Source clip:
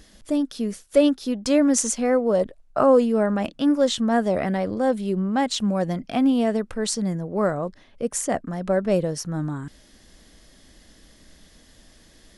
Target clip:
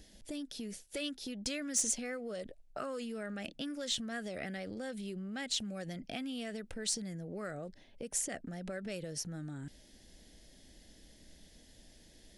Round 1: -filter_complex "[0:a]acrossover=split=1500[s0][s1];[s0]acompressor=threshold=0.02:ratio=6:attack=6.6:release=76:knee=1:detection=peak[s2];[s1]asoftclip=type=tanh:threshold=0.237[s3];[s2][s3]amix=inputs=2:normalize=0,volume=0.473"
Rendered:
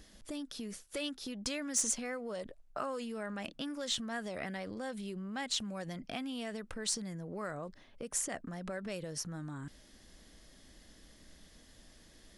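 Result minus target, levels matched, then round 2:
1 kHz band +4.5 dB
-filter_complex "[0:a]acrossover=split=1500[s0][s1];[s0]acompressor=threshold=0.02:ratio=6:attack=6.6:release=76:knee=1:detection=peak,lowpass=f=1000:w=0.5412,lowpass=f=1000:w=1.3066[s2];[s1]asoftclip=type=tanh:threshold=0.237[s3];[s2][s3]amix=inputs=2:normalize=0,volume=0.473"

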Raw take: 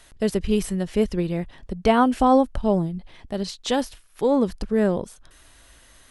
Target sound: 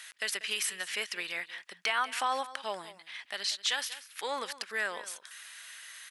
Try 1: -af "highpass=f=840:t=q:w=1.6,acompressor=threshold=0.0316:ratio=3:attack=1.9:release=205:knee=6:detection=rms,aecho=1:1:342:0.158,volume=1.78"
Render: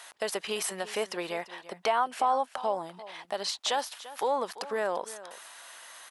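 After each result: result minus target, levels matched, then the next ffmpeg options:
echo 153 ms late; 2 kHz band -7.0 dB
-af "highpass=f=840:t=q:w=1.6,acompressor=threshold=0.0316:ratio=3:attack=1.9:release=205:knee=6:detection=rms,aecho=1:1:189:0.158,volume=1.78"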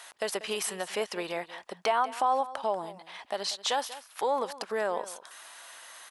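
2 kHz band -7.0 dB
-af "highpass=f=1800:t=q:w=1.6,acompressor=threshold=0.0316:ratio=3:attack=1.9:release=205:knee=6:detection=rms,aecho=1:1:189:0.158,volume=1.78"

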